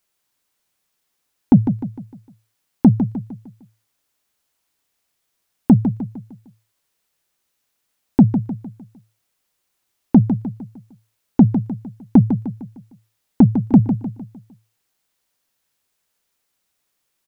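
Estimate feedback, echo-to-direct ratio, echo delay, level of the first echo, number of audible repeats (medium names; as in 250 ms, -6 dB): 43%, -8.0 dB, 152 ms, -9.0 dB, 4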